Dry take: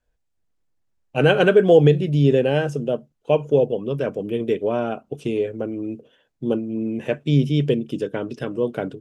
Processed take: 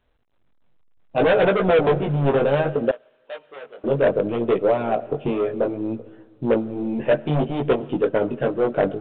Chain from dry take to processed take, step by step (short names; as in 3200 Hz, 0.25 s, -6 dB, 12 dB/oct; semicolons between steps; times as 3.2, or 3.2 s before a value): Wiener smoothing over 9 samples; soft clip -19 dBFS, distortion -7 dB; on a send at -16 dB: reverb RT60 2.0 s, pre-delay 45 ms; on the sum: harmonic-percussive split percussive +7 dB; low-pass opened by the level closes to 1200 Hz, open at -19 dBFS; in parallel at -2 dB: compressor 6:1, threshold -32 dBFS, peak gain reduction 15.5 dB; on the sum: dynamic EQ 620 Hz, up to +8 dB, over -33 dBFS, Q 1.5; chorus 0.64 Hz, delay 15.5 ms, depth 6.6 ms; 2.91–3.84 differentiator; wavefolder -10 dBFS; A-law 64 kbps 8000 Hz